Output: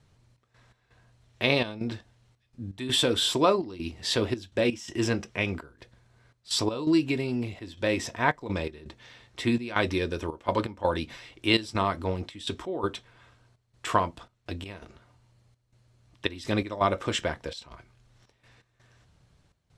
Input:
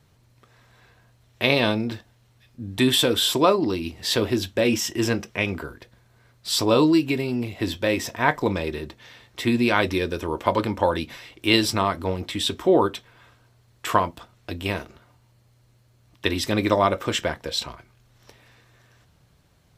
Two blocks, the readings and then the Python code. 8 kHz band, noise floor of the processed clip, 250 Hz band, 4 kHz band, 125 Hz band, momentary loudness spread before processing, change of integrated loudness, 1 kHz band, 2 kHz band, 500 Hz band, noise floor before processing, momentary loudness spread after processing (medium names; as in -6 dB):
-6.5 dB, -72 dBFS, -6.0 dB, -5.0 dB, -4.5 dB, 14 LU, -5.5 dB, -5.0 dB, -5.0 dB, -6.0 dB, -60 dBFS, 15 LU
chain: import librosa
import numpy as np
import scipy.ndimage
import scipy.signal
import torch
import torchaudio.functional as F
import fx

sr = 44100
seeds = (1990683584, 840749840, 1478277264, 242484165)

y = scipy.signal.sosfilt(scipy.signal.butter(4, 9800.0, 'lowpass', fs=sr, output='sos'), x)
y = fx.low_shelf(y, sr, hz=61.0, db=6.0)
y = fx.step_gate(y, sr, bpm=83, pattern='xx.x.xxxx.x', floor_db=-12.0, edge_ms=4.5)
y = y * 10.0 ** (-4.0 / 20.0)